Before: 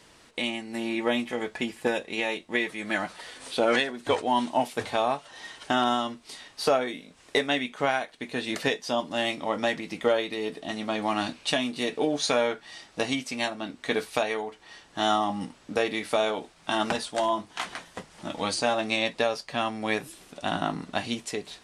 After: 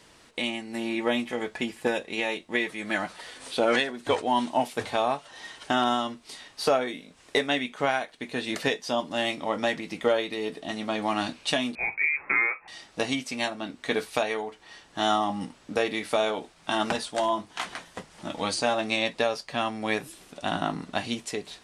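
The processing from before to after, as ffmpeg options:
-filter_complex "[0:a]asettb=1/sr,asplit=3[a][b][c];[a]atrim=end=11.754[d];[b]atrim=start=11.75:end=12.68,asetpts=PTS-STARTPTS,afade=t=in:d=0.004:c=qsin,afade=t=out:st=0.926:d=0.004:c=qsin,lowpass=f=2.3k:t=q:w=0.5098,lowpass=f=2.3k:t=q:w=0.6013,lowpass=f=2.3k:t=q:w=0.9,lowpass=f=2.3k:t=q:w=2.563,afreqshift=-2700[e];[c]atrim=start=12.676[f];[d][e]acrossfade=d=0.004:c1=hsin:c2=qsin[g];[g][f]acrossfade=d=0.004:c1=qsin:c2=hsin"

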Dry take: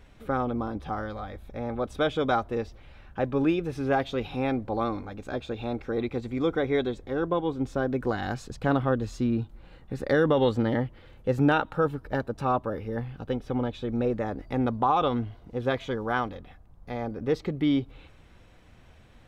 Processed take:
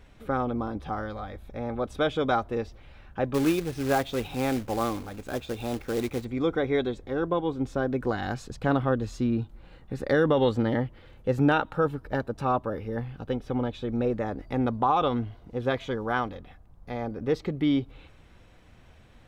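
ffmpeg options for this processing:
-filter_complex "[0:a]asettb=1/sr,asplit=3[a][b][c];[a]atrim=end=3.344[d];[b]atrim=start=3.34:end=6.25,asetpts=PTS-STARTPTS,afade=t=in:d=0.004:c=qsin,afade=t=out:st=2.906:d=0.004:c=qsin,acrusher=bits=3:mode=log:mix=0:aa=0.000001[e];[c]atrim=start=6.246[f];[d][e]acrossfade=d=0.004:c1=hsin:c2=qsin[g];[g][f]acrossfade=d=0.004:c1=qsin:c2=hsin"

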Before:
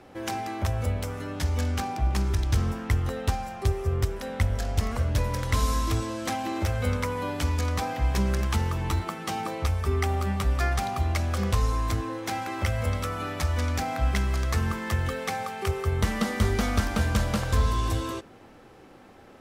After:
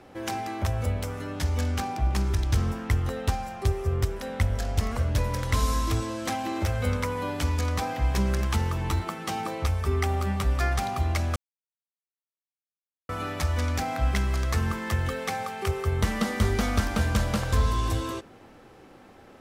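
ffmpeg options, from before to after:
-filter_complex "[0:a]asplit=3[a][b][c];[a]atrim=end=11.36,asetpts=PTS-STARTPTS,afade=t=out:st=11.356:d=0.004:c=hsin[d];[b]atrim=start=11.36:end=13.09,asetpts=PTS-STARTPTS,volume=0[e];[c]atrim=start=13.09,asetpts=PTS-STARTPTS,afade=t=in:d=0.004:c=hsin[f];[d][e][f]concat=n=3:v=0:a=1"

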